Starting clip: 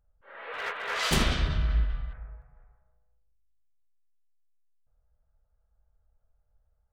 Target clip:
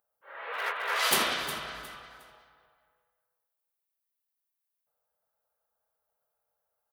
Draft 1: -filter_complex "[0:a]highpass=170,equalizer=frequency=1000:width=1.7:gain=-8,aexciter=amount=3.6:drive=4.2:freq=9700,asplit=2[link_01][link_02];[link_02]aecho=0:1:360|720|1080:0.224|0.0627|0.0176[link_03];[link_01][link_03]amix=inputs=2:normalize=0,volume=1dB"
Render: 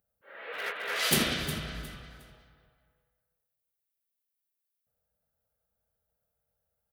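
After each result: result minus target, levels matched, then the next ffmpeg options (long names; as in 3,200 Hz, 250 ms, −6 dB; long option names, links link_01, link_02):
125 Hz band +15.0 dB; 1,000 Hz band −5.5 dB
-filter_complex "[0:a]highpass=420,equalizer=frequency=1000:width=1.7:gain=-8,aexciter=amount=3.6:drive=4.2:freq=9700,asplit=2[link_01][link_02];[link_02]aecho=0:1:360|720|1080:0.224|0.0627|0.0176[link_03];[link_01][link_03]amix=inputs=2:normalize=0,volume=1dB"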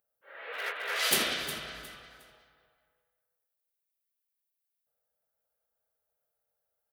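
1,000 Hz band −5.5 dB
-filter_complex "[0:a]highpass=420,equalizer=frequency=1000:width=1.7:gain=2.5,aexciter=amount=3.6:drive=4.2:freq=9700,asplit=2[link_01][link_02];[link_02]aecho=0:1:360|720|1080:0.224|0.0627|0.0176[link_03];[link_01][link_03]amix=inputs=2:normalize=0,volume=1dB"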